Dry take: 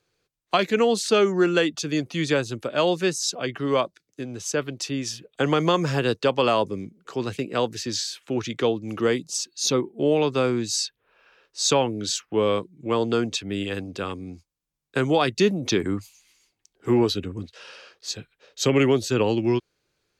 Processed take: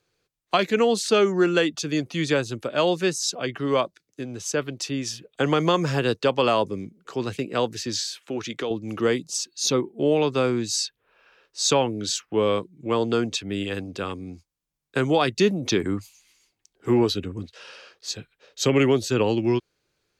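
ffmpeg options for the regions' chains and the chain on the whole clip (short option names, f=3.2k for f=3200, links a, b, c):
-filter_complex "[0:a]asettb=1/sr,asplit=3[a][b][c];[a]atrim=end=8.064[d];[b]atrim=start=8.06:end=8.71,asetpts=PTS-STARTPTS,afade=t=in:d=0.004:c=qsin,afade=t=out:st=0.646:d=0.004:c=qsin,highpass=f=220:p=1,acompressor=threshold=-24dB:ratio=4:attack=3.2:release=140:knee=1:detection=peak[e];[c]atrim=start=8.706[f];[d][e]acrossfade=d=0.004:c1=hsin:c2=qsin[g];[g][f]acrossfade=d=0.004:c1=qsin:c2=hsin"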